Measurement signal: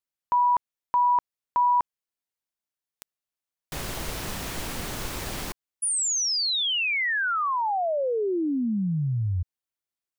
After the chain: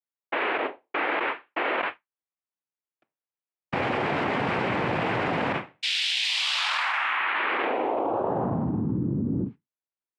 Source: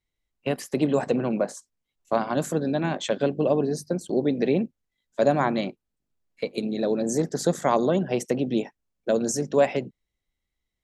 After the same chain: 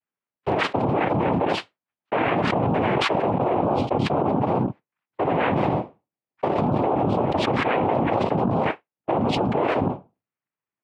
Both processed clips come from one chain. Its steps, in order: gate -42 dBFS, range -36 dB; tone controls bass -9 dB, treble -11 dB; flange 0.44 Hz, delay 3.7 ms, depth 8.7 ms, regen -75%; noise vocoder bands 4; air absorption 440 m; fast leveller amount 100%

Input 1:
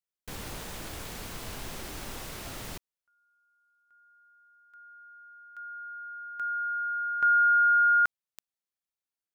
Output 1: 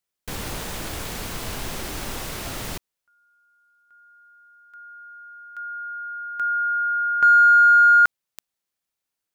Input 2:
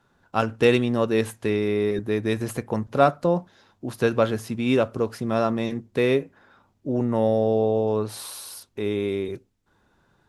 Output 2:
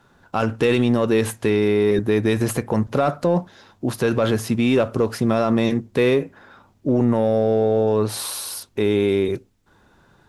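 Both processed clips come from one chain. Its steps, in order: in parallel at -10 dB: hard clip -19.5 dBFS; on the sum: limiter -15.5 dBFS; gain +6 dB

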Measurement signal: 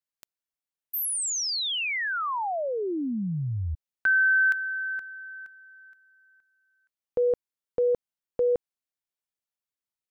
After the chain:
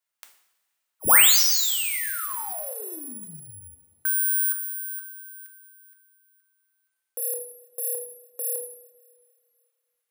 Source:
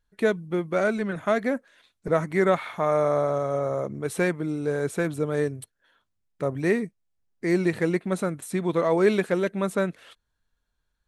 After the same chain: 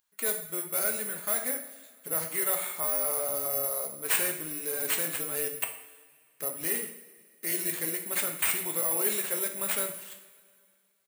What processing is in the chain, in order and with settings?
downsampling 22050 Hz; high shelf 7400 Hz +9 dB; in parallel at +1.5 dB: limiter -17 dBFS; on the sum: RIAA curve recording; careless resampling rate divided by 4×, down none, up zero stuff; two-slope reverb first 0.64 s, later 2.4 s, from -17 dB, DRR 3 dB; gain -17 dB

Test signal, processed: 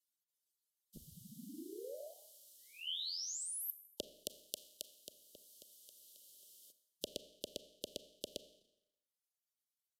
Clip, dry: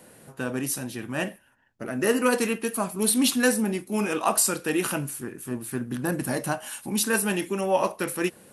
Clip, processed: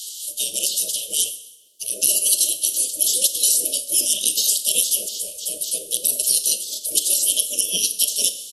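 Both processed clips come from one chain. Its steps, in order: spectral gate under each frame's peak -20 dB weak; tilt +3 dB/oct; vocal rider within 3 dB 0.5 s; downsampling 32000 Hz; Chebyshev band-stop 610–3000 Hz, order 5; bell 110 Hz -8 dB 0.73 oct; Schroeder reverb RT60 0.74 s, combs from 28 ms, DRR 13 dB; maximiser +15 dB; three-band squash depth 40%; gain -2 dB

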